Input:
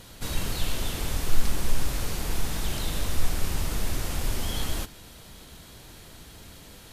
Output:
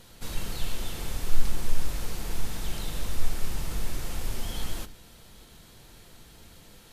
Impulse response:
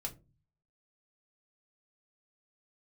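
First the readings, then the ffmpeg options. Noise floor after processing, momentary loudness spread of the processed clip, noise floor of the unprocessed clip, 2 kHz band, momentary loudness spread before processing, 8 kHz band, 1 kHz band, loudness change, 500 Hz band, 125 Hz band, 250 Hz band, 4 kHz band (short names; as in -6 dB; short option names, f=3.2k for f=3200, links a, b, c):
-53 dBFS, 16 LU, -48 dBFS, -5.0 dB, 16 LU, -5.0 dB, -5.0 dB, -4.5 dB, -5.0 dB, -4.5 dB, -5.0 dB, -5.0 dB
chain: -filter_complex "[0:a]asplit=2[a][b];[1:a]atrim=start_sample=2205[c];[b][c]afir=irnorm=-1:irlink=0,volume=-6.5dB[d];[a][d]amix=inputs=2:normalize=0,volume=-7.5dB"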